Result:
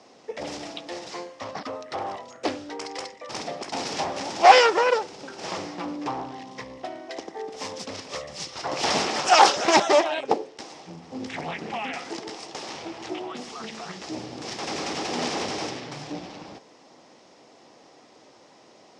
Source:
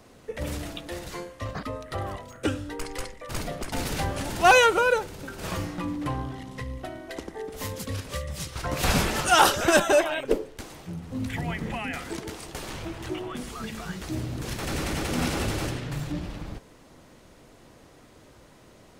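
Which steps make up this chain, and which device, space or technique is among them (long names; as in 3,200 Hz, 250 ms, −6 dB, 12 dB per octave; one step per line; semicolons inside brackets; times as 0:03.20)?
full-range speaker at full volume (highs frequency-modulated by the lows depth 0.97 ms; loudspeaker in its box 270–7,200 Hz, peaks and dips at 790 Hz +6 dB, 1,500 Hz −5 dB, 5,300 Hz +8 dB)
level +1 dB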